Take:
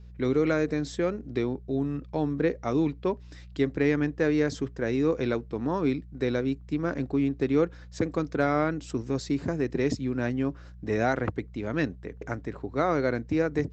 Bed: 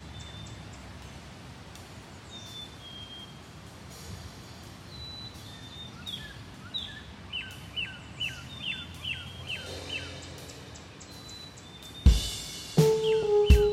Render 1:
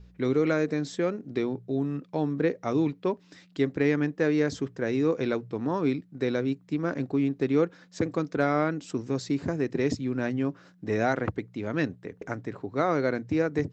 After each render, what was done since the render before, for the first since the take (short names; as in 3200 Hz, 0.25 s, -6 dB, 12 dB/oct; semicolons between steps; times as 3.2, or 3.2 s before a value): de-hum 60 Hz, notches 2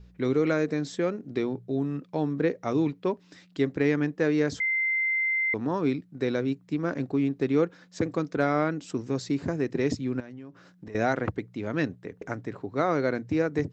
4.6–5.54 bleep 2080 Hz -23 dBFS; 10.2–10.95 compressor 16:1, threshold -38 dBFS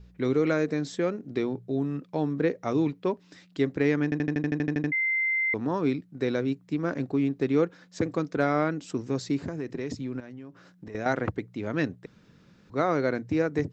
4.04 stutter in place 0.08 s, 11 plays; 9.4–11.06 compressor 4:1, threshold -29 dBFS; 12.06–12.7 room tone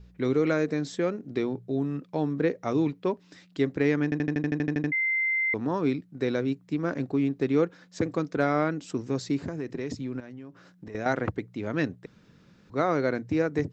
nothing audible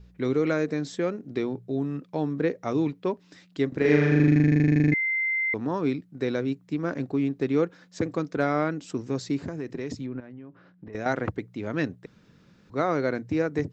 3.68–4.94 flutter echo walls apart 6.9 m, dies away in 1.3 s; 10.06–10.93 air absorption 320 m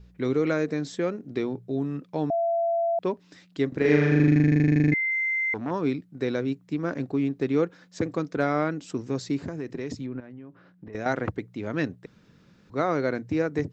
2.3–2.99 bleep 675 Hz -21.5 dBFS; 5.11–5.71 core saturation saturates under 620 Hz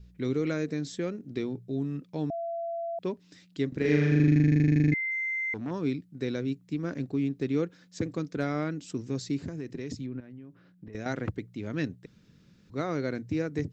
bell 890 Hz -10 dB 2.4 oct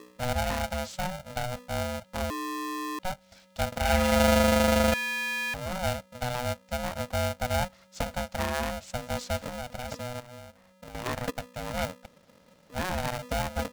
polarity switched at an audio rate 370 Hz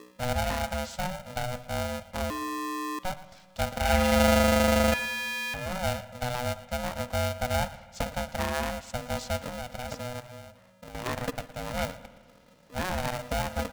echo 0.115 s -17.5 dB; spring tank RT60 1.6 s, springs 54 ms, chirp 55 ms, DRR 15.5 dB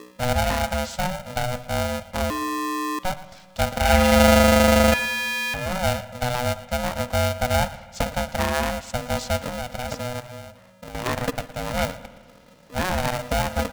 gain +6.5 dB